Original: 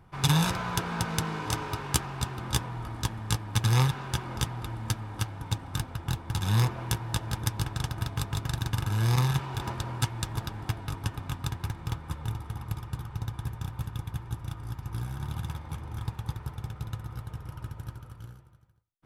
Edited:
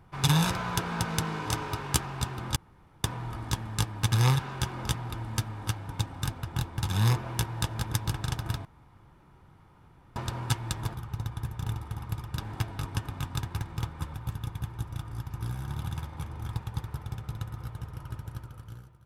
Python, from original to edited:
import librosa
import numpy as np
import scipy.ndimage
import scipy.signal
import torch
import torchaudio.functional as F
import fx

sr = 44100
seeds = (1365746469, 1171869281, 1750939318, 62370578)

y = fx.edit(x, sr, fx.insert_room_tone(at_s=2.56, length_s=0.48),
    fx.room_tone_fill(start_s=8.17, length_s=1.51),
    fx.swap(start_s=10.46, length_s=1.77, other_s=12.96, other_length_s=0.7), tone=tone)